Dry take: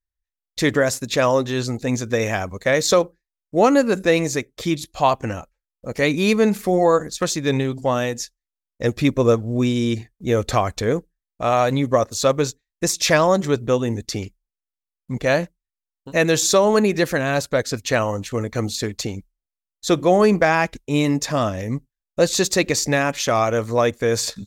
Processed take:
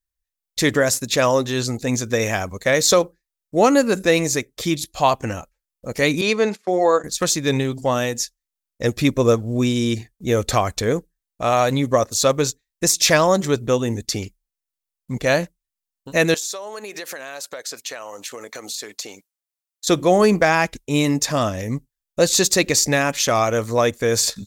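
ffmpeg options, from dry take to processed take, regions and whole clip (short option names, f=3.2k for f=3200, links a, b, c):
-filter_complex "[0:a]asettb=1/sr,asplit=3[a][b][c];[a]atrim=end=6.214[d];[b]atrim=start=6.21:end=7.04,asetpts=PTS-STARTPTS,afade=t=in:d=0.004:c=qsin,afade=t=out:st=0.826:d=0.004:c=qsin,agate=range=-21dB:threshold=-26dB:ratio=16:release=100:detection=peak,highpass=310,lowpass=5.4k[e];[c]atrim=start=7.036[f];[d][e]acrossfade=d=0.004:c1=hsin:c2=qsin[g];[g][f]acrossfade=d=0.004:c1=qsin:c2=hsin,asettb=1/sr,asplit=3[h][i][j];[h]atrim=end=16.344[k];[i]atrim=start=16.34:end=19.87,asetpts=PTS-STARTPTS,afade=t=in:d=0.004:c=qsin,afade=t=out:st=3.526:d=0.004:c=qsin,highpass=510,acompressor=threshold=-30dB:ratio=6:attack=3.2:release=140:knee=1:detection=peak[l];[j]atrim=start=19.866[m];[k][l]acrossfade=d=0.004:c1=hsin:c2=qsin[n];[n][m]acrossfade=d=0.004:c1=qsin:c2=hsin,deesser=0.3,highshelf=f=4.5k:g=8"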